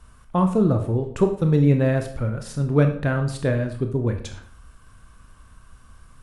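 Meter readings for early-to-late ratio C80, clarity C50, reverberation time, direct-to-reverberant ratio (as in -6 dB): 13.0 dB, 9.0 dB, 0.55 s, 5.0 dB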